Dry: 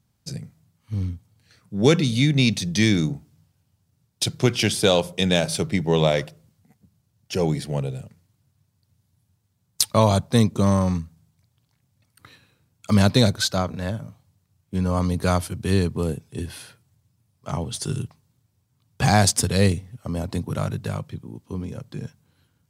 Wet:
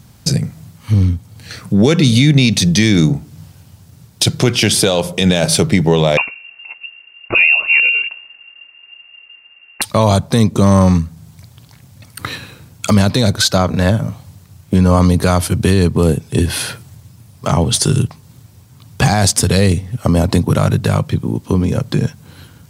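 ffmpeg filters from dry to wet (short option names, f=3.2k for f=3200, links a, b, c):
-filter_complex "[0:a]asettb=1/sr,asplit=3[a][b][c];[a]atrim=end=6.174[d];[b]atrim=start=6.17:end=9.82,asetpts=PTS-STARTPTS,afade=t=in:d=0.004:c=qsin,afade=t=out:st=3.646:d=0.004:c=qsin,lowpass=f=2.5k:t=q:w=0.5098,lowpass=f=2.5k:t=q:w=0.6013,lowpass=f=2.5k:t=q:w=0.9,lowpass=f=2.5k:t=q:w=2.563,afreqshift=-2900[e];[c]atrim=start=9.816[f];[d][e]acrossfade=d=0.004:c1=hsin:c2=qsin[g];[g][f]acrossfade=d=0.004:c1=qsin:c2=hsin,acompressor=threshold=-43dB:ratio=2,alimiter=level_in=26dB:limit=-1dB:release=50:level=0:latency=1,volume=-1dB"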